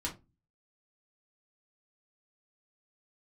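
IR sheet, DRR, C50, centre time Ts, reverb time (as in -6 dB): -4.0 dB, 13.0 dB, 15 ms, 0.25 s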